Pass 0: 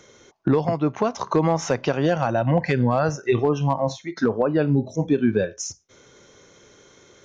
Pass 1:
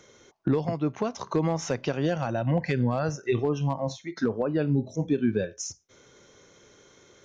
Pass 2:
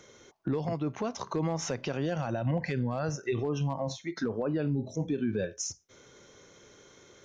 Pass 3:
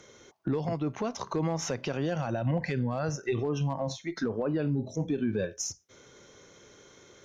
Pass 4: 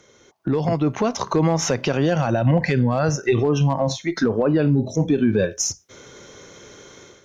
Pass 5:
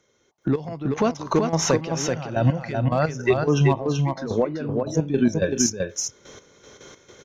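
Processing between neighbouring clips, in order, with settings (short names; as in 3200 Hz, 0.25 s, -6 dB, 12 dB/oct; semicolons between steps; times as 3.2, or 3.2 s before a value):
dynamic EQ 940 Hz, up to -5 dB, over -35 dBFS, Q 0.75; gain -4 dB
limiter -22 dBFS, peak gain reduction 7.5 dB
added harmonics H 2 -30 dB, 6 -43 dB, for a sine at -21.5 dBFS; gain +1 dB
AGC gain up to 11 dB
step gate "...x...x.x.xx." 108 bpm -12 dB; echo 0.382 s -4 dB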